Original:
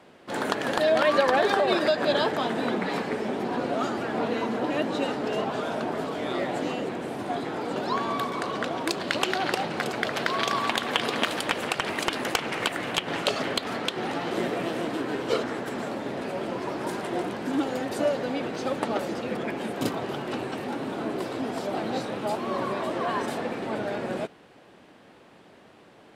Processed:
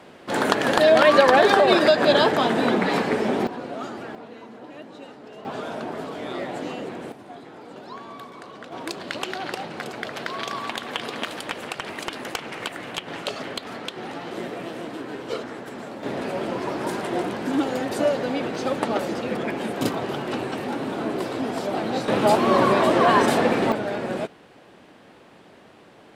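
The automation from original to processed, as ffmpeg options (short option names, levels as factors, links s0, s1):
-af "asetnsamples=n=441:p=0,asendcmd='3.47 volume volume -5dB;4.15 volume volume -14dB;5.45 volume volume -2dB;7.12 volume volume -11dB;8.72 volume volume -4dB;16.03 volume volume 3.5dB;22.08 volume volume 11dB;23.72 volume volume 3dB',volume=2.11"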